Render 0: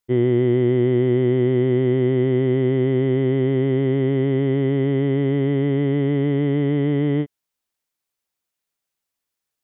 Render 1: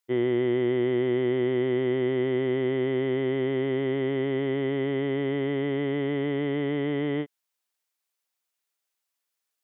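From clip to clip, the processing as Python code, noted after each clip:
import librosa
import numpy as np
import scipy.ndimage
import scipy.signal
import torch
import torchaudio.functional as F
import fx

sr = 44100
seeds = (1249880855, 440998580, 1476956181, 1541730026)

y = fx.highpass(x, sr, hz=620.0, slope=6)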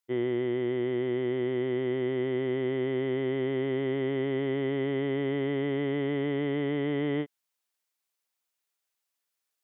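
y = fx.rider(x, sr, range_db=10, speed_s=0.5)
y = F.gain(torch.from_numpy(y), -3.0).numpy()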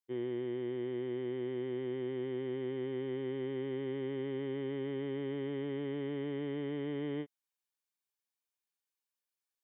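y = fx.notch_comb(x, sr, f0_hz=670.0)
y = F.gain(torch.from_numpy(y), -8.0).numpy()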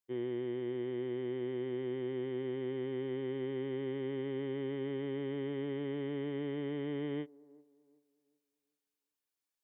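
y = fx.echo_wet_bandpass(x, sr, ms=380, feedback_pct=32, hz=450.0, wet_db=-22.0)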